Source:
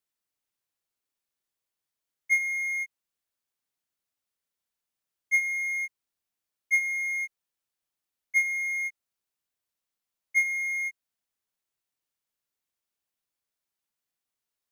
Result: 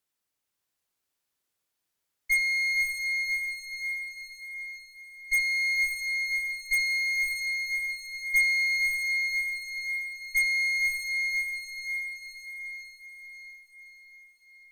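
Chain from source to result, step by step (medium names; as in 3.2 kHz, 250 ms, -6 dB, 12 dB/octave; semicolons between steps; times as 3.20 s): Chebyshev shaper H 5 -15 dB, 8 -18 dB, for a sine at -14 dBFS; echo that smears into a reverb 567 ms, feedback 55%, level -3.5 dB; trim -2 dB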